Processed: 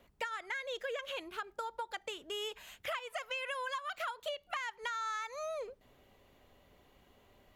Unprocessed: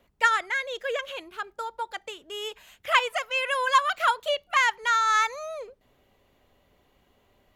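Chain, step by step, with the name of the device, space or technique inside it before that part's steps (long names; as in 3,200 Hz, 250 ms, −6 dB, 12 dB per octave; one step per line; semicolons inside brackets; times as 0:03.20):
serial compression, peaks first (downward compressor 6 to 1, threshold −30 dBFS, peak gain reduction 14.5 dB; downward compressor 2.5 to 1, threshold −38 dBFS, peak gain reduction 8.5 dB)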